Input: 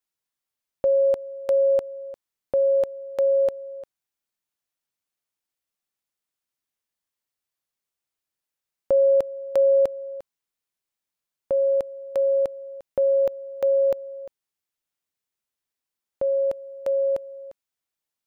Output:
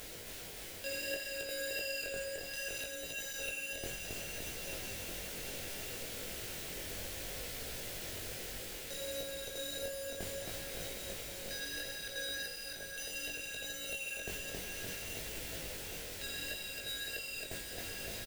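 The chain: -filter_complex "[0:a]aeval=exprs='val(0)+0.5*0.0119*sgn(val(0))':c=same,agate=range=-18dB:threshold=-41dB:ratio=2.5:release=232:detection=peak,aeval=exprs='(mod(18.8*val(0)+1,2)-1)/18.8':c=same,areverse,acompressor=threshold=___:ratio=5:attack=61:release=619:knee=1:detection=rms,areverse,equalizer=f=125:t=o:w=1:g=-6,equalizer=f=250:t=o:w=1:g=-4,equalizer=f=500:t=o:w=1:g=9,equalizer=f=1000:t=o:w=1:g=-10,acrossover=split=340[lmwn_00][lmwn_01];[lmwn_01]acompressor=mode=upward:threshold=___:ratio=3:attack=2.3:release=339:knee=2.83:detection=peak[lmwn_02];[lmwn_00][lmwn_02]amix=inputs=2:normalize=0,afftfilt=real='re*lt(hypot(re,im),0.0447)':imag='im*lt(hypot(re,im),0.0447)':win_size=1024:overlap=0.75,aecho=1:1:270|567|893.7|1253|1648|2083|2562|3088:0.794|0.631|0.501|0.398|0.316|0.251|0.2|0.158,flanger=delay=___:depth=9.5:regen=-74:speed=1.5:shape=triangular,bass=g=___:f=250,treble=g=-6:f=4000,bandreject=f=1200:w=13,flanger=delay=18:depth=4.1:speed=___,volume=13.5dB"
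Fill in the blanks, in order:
-45dB, -44dB, 4.7, 14, 0.65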